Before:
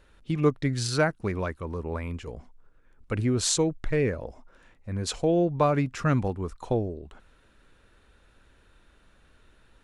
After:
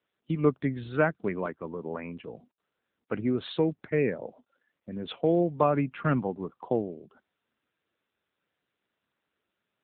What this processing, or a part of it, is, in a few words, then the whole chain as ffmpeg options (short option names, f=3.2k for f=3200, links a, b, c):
mobile call with aggressive noise cancelling: -af "highpass=f=150:w=0.5412,highpass=f=150:w=1.3066,afftdn=nr=22:nf=-47" -ar 8000 -c:a libopencore_amrnb -b:a 7950